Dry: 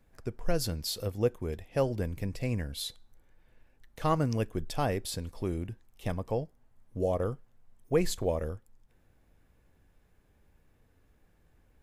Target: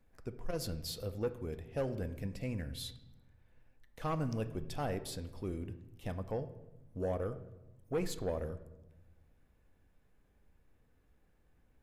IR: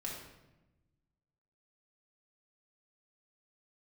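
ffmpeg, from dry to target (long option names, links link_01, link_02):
-filter_complex "[0:a]asoftclip=type=tanh:threshold=-22dB,asplit=2[link_01][link_02];[1:a]atrim=start_sample=2205,lowpass=4200[link_03];[link_02][link_03]afir=irnorm=-1:irlink=0,volume=-7.5dB[link_04];[link_01][link_04]amix=inputs=2:normalize=0,volume=-7dB"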